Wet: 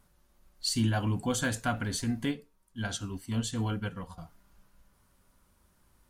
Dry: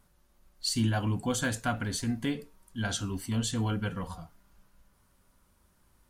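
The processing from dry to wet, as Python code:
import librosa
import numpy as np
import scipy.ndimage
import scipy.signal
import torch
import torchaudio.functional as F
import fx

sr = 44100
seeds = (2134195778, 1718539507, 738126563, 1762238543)

y = fx.upward_expand(x, sr, threshold_db=-46.0, expansion=1.5, at=(2.31, 4.18))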